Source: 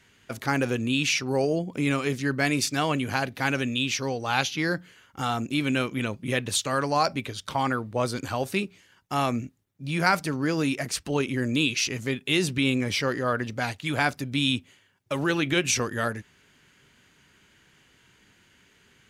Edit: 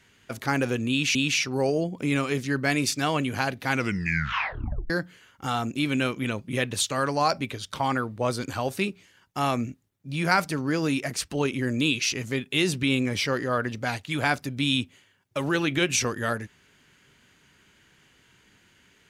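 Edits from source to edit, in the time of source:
0:00.90–0:01.15: repeat, 2 plays
0:03.45: tape stop 1.20 s

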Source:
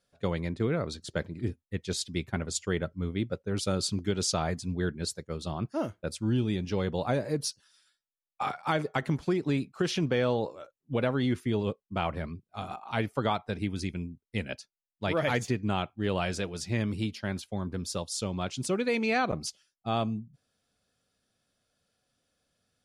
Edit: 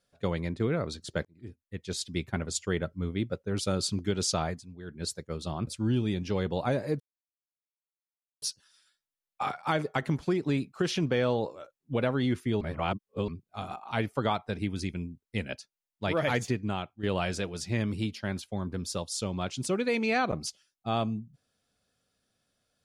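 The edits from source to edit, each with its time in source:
0:01.25–0:02.14: fade in
0:04.42–0:05.09: duck −14 dB, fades 0.24 s
0:05.67–0:06.09: remove
0:07.42: splice in silence 1.42 s
0:11.61–0:12.28: reverse
0:15.50–0:16.03: fade out, to −9.5 dB

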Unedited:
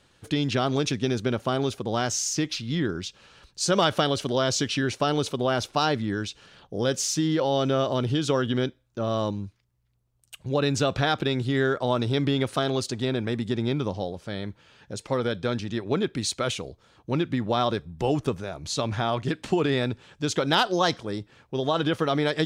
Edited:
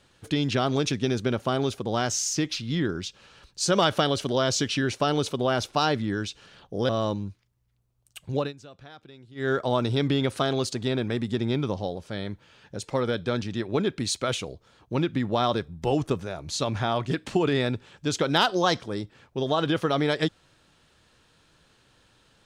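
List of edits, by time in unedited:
0:06.89–0:09.06: remove
0:10.53–0:11.69: duck −23 dB, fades 0.17 s

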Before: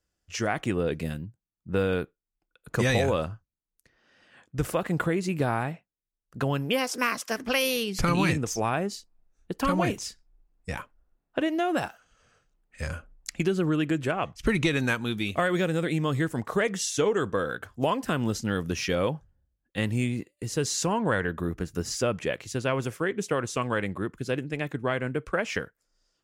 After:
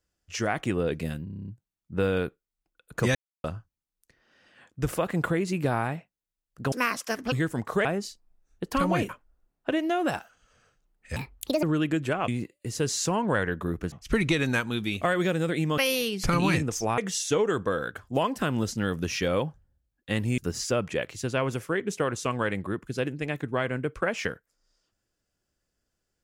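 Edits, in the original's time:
0:01.24: stutter 0.03 s, 9 plays
0:02.91–0:03.20: silence
0:06.48–0:06.93: remove
0:07.53–0:08.73: swap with 0:16.12–0:16.65
0:09.97–0:10.78: remove
0:12.85–0:13.61: play speed 162%
0:20.05–0:21.69: move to 0:14.26

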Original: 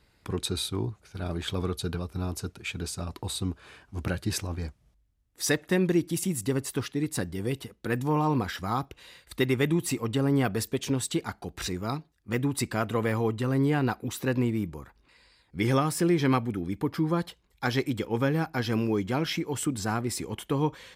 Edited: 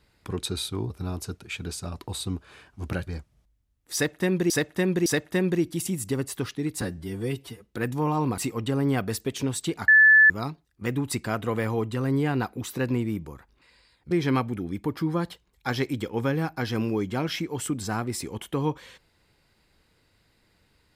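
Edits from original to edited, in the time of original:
0:00.90–0:02.05: remove
0:04.22–0:04.56: remove
0:05.43–0:05.99: repeat, 3 plays
0:07.18–0:07.74: time-stretch 1.5×
0:08.47–0:09.85: remove
0:11.35–0:11.77: beep over 1,740 Hz −11.5 dBFS
0:15.58–0:16.08: remove

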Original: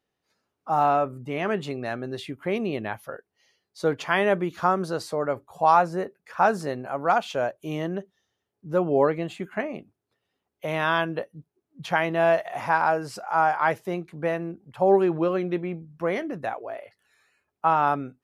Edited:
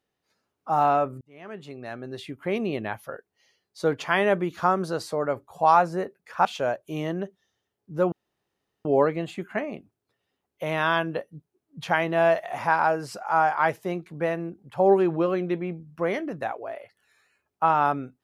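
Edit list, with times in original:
0:01.21–0:02.58: fade in
0:06.45–0:07.20: remove
0:08.87: splice in room tone 0.73 s

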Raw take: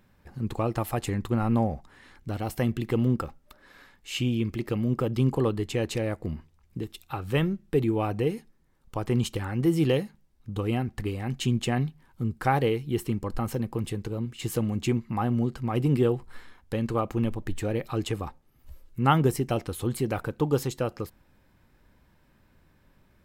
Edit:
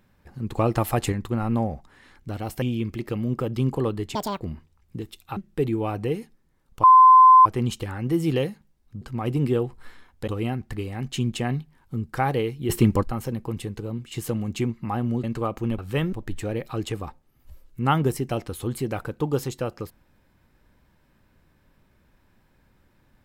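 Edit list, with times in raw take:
0:00.56–0:01.12: clip gain +5.5 dB
0:02.62–0:04.22: remove
0:05.75–0:06.22: play speed 184%
0:07.18–0:07.52: move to 0:17.32
0:08.99: insert tone 1,030 Hz −8 dBFS 0.62 s
0:12.97–0:13.30: clip gain +10.5 dB
0:15.51–0:16.77: move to 0:10.55

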